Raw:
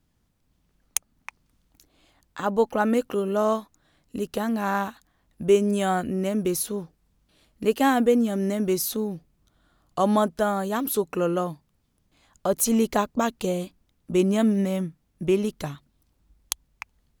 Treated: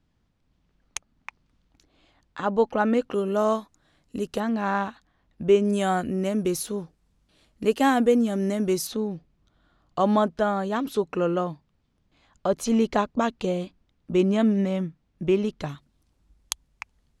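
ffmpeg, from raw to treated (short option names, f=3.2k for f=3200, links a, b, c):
-af "asetnsamples=n=441:p=0,asendcmd='3.14 lowpass f 9300;4.4 lowpass f 4500;5.65 lowpass f 9500;8.87 lowpass f 4700;15.69 lowpass f 9500',lowpass=4.8k"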